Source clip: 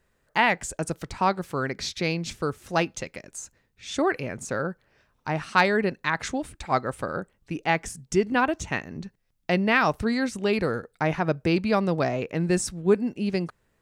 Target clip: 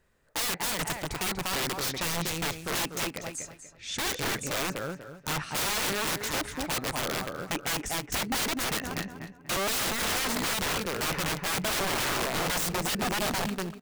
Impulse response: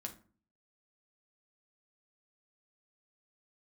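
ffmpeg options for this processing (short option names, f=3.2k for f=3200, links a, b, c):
-filter_complex "[0:a]asplit=2[a][b];[b]adelay=242,lowpass=f=4k:p=1,volume=-7dB,asplit=2[c][d];[d]adelay=242,lowpass=f=4k:p=1,volume=0.29,asplit=2[e][f];[f]adelay=242,lowpass=f=4k:p=1,volume=0.29,asplit=2[g][h];[h]adelay=242,lowpass=f=4k:p=1,volume=0.29[i];[c][e][g][i]amix=inputs=4:normalize=0[j];[a][j]amix=inputs=2:normalize=0,aeval=exprs='(mod(15.8*val(0)+1,2)-1)/15.8':c=same,asplit=2[k][l];[l]aecho=0:1:249|498:0.15|0.0314[m];[k][m]amix=inputs=2:normalize=0"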